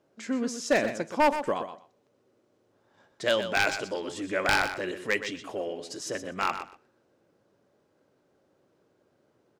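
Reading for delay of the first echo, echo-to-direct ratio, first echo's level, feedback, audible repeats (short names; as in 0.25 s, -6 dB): 0.123 s, -10.0 dB, -10.0 dB, 16%, 2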